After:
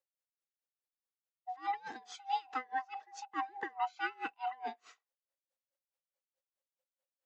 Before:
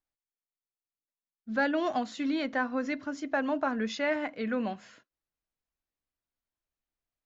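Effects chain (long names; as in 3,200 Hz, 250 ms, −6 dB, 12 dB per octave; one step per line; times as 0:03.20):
neighbouring bands swapped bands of 500 Hz
high-pass filter 340 Hz 24 dB per octave
tremolo with a sine in dB 4.7 Hz, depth 26 dB
level −1 dB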